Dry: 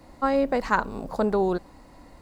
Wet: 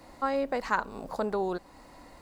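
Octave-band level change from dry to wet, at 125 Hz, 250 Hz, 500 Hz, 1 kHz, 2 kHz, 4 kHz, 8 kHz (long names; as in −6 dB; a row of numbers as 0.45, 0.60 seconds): −9.5 dB, −8.5 dB, −6.0 dB, −4.5 dB, −4.0 dB, −3.0 dB, can't be measured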